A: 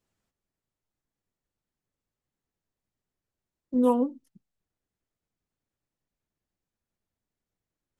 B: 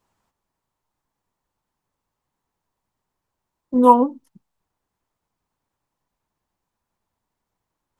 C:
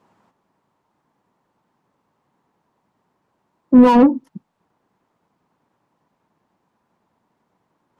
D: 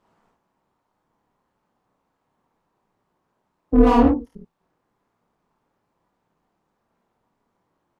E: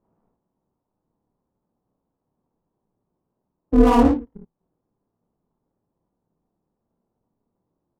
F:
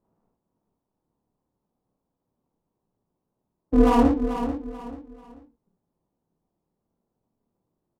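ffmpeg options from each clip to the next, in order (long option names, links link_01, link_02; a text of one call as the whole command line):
ffmpeg -i in.wav -af "equalizer=frequency=960:width=1.9:gain=12.5,volume=6dB" out.wav
ffmpeg -i in.wav -filter_complex "[0:a]asplit=2[link_01][link_02];[link_02]highpass=frequency=720:poles=1,volume=29dB,asoftclip=type=tanh:threshold=-1dB[link_03];[link_01][link_03]amix=inputs=2:normalize=0,lowpass=frequency=1400:poles=1,volume=-6dB,equalizer=frequency=180:width_type=o:width=2.4:gain=13,volume=-8.5dB" out.wav
ffmpeg -i in.wav -filter_complex "[0:a]tremolo=f=210:d=0.889,asplit=2[link_01][link_02];[link_02]aecho=0:1:29|55|72:0.596|0.668|0.422[link_03];[link_01][link_03]amix=inputs=2:normalize=0,volume=-3dB" out.wav
ffmpeg -i in.wav -af "adynamicsmooth=sensitivity=7:basefreq=560" out.wav
ffmpeg -i in.wav -af "aecho=1:1:438|876|1314:0.335|0.104|0.0322,volume=-3dB" out.wav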